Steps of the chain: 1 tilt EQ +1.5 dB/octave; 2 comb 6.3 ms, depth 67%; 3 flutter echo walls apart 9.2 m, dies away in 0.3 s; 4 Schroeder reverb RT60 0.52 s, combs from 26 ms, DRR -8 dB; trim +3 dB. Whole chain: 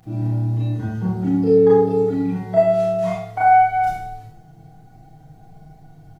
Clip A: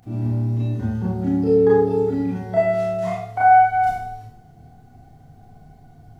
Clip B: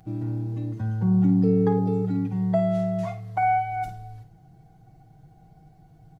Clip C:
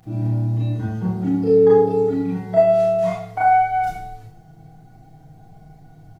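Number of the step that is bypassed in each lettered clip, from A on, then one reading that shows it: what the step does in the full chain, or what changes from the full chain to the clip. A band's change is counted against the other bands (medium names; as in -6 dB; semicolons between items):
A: 2, 2 kHz band +3.0 dB; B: 4, loudness change -6.0 LU; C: 3, 500 Hz band +2.5 dB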